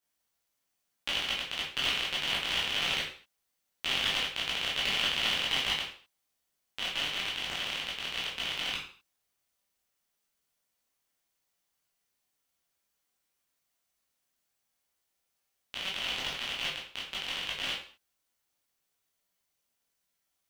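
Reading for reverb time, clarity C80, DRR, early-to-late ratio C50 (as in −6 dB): non-exponential decay, 8.5 dB, −6.0 dB, 4.0 dB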